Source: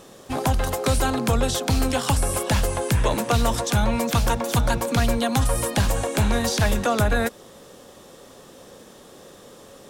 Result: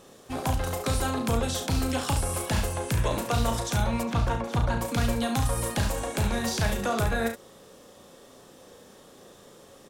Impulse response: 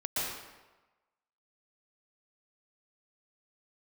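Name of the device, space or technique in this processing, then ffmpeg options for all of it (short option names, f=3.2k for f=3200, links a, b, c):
slapback doubling: -filter_complex "[0:a]asplit=3[a][b][c];[b]adelay=35,volume=-6.5dB[d];[c]adelay=70,volume=-8.5dB[e];[a][d][e]amix=inputs=3:normalize=0,asettb=1/sr,asplit=3[f][g][h];[f]atrim=end=4.034[i];[g]atrim=start=4.03:end=4.81,asetpts=PTS-STARTPTS,afade=t=in:d=0.004:c=qsin,afade=t=out:st=0.776:d=0.004:c=qsin,aemphasis=mode=reproduction:type=75fm[j];[h]atrim=start=4.806[k];[i][j]acrossfade=d=0.004:c1=hsin:c2=qsin[l];[l][k]acrossfade=d=0.004:c1=qsin:c2=hsin,volume=-6.5dB"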